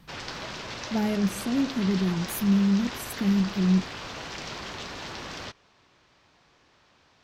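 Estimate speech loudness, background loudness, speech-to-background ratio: -26.0 LUFS, -36.5 LUFS, 10.5 dB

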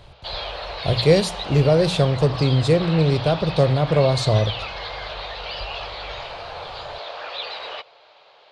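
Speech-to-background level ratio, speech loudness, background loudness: 11.0 dB, -19.5 LUFS, -30.5 LUFS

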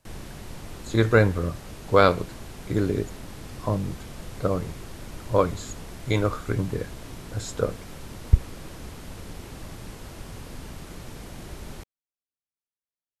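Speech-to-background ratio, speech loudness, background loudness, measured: 15.5 dB, -25.5 LUFS, -41.0 LUFS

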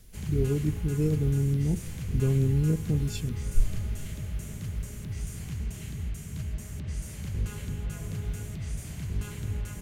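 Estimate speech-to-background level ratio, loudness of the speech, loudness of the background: 7.0 dB, -28.5 LUFS, -35.5 LUFS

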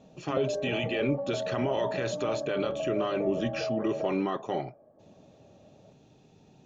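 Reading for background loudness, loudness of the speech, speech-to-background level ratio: -34.0 LUFS, -32.0 LUFS, 2.0 dB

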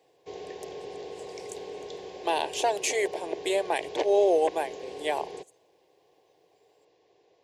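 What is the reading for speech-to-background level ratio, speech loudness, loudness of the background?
13.0 dB, -27.5 LUFS, -40.5 LUFS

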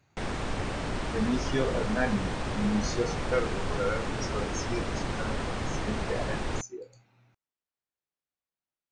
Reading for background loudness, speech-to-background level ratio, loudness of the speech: -33.5 LUFS, 0.0 dB, -33.5 LUFS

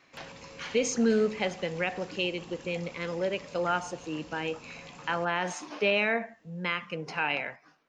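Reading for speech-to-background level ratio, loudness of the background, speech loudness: 17.0 dB, -47.5 LUFS, -30.5 LUFS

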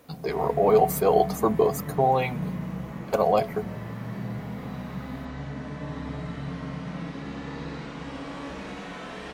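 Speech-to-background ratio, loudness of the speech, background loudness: 11.5 dB, -24.0 LUFS, -35.5 LUFS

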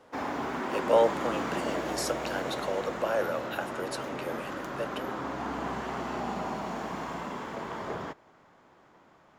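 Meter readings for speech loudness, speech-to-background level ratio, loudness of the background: -32.5 LUFS, 2.5 dB, -35.0 LUFS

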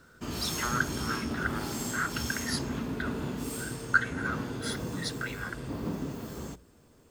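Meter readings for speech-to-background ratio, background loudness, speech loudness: 1.5 dB, -35.5 LUFS, -34.0 LUFS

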